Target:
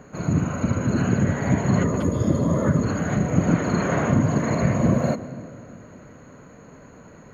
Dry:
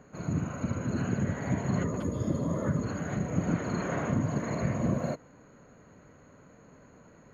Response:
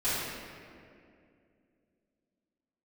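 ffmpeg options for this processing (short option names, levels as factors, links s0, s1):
-filter_complex "[0:a]asplit=2[s0][s1];[1:a]atrim=start_sample=2205,adelay=116[s2];[s1][s2]afir=irnorm=-1:irlink=0,volume=0.0531[s3];[s0][s3]amix=inputs=2:normalize=0,volume=2.82"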